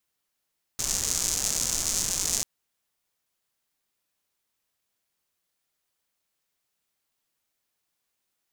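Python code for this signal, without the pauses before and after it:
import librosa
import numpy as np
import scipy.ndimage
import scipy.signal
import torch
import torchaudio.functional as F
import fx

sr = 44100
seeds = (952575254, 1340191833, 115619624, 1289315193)

y = fx.rain(sr, seeds[0], length_s=1.64, drops_per_s=210.0, hz=6600.0, bed_db=-9.5)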